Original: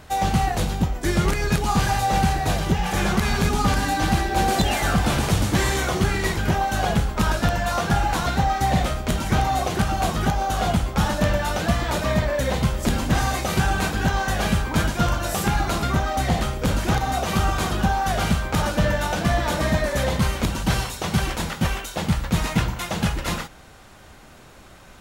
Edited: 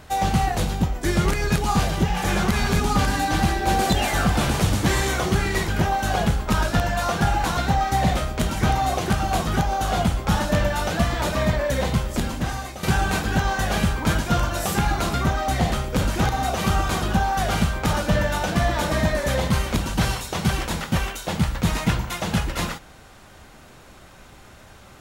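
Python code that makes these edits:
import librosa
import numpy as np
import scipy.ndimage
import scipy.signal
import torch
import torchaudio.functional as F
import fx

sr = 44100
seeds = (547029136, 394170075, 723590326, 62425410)

y = fx.edit(x, sr, fx.cut(start_s=1.83, length_s=0.69),
    fx.fade_out_to(start_s=12.54, length_s=0.98, floor_db=-12.5), tone=tone)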